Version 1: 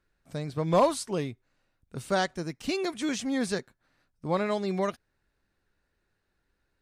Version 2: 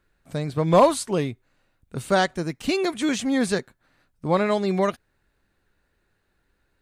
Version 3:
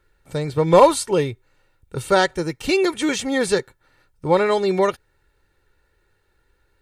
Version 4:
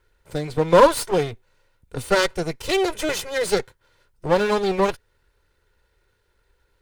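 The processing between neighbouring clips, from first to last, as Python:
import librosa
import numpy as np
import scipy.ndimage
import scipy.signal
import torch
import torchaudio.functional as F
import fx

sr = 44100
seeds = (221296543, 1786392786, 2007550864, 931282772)

y1 = fx.peak_eq(x, sr, hz=5400.0, db=-5.0, octaves=0.39)
y1 = y1 * librosa.db_to_amplitude(6.5)
y2 = y1 + 0.6 * np.pad(y1, (int(2.2 * sr / 1000.0), 0))[:len(y1)]
y2 = y2 * librosa.db_to_amplitude(3.0)
y3 = fx.lower_of_two(y2, sr, delay_ms=2.0)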